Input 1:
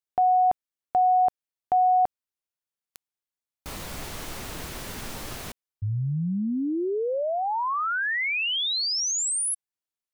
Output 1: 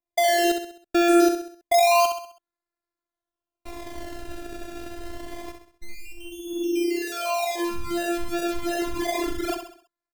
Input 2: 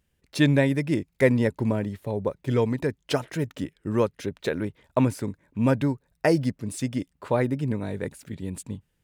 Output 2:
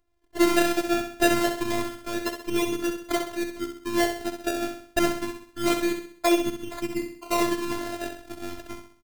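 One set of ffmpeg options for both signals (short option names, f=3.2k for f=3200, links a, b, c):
-af "acrusher=samples=28:mix=1:aa=0.000001:lfo=1:lforange=28:lforate=0.27,aecho=1:1:65|130|195|260|325:0.447|0.197|0.0865|0.0381|0.0167,afftfilt=real='hypot(re,im)*cos(PI*b)':imag='0':win_size=512:overlap=0.75,volume=3dB"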